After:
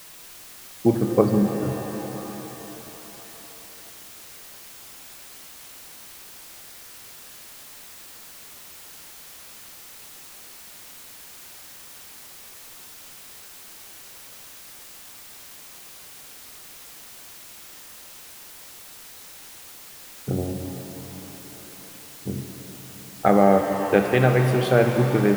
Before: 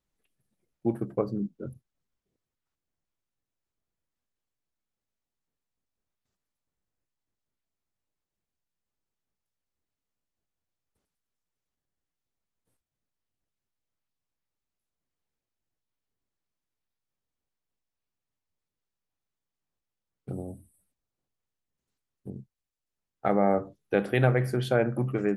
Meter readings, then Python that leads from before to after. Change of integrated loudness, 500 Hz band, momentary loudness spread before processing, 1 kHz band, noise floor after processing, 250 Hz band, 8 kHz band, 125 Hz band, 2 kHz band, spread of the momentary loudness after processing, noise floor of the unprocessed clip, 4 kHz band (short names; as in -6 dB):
+5.5 dB, +8.0 dB, 20 LU, +9.0 dB, -44 dBFS, +8.5 dB, +22.0 dB, +7.0 dB, +7.0 dB, 21 LU, under -85 dBFS, n/a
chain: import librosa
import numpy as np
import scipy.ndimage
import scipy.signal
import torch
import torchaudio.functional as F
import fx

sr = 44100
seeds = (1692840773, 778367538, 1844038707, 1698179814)

y = fx.rider(x, sr, range_db=10, speed_s=0.5)
y = fx.dmg_noise_colour(y, sr, seeds[0], colour='white', level_db=-52.0)
y = fx.rev_shimmer(y, sr, seeds[1], rt60_s=3.7, semitones=7, shimmer_db=-8, drr_db=5.0)
y = F.gain(torch.from_numpy(y), 7.0).numpy()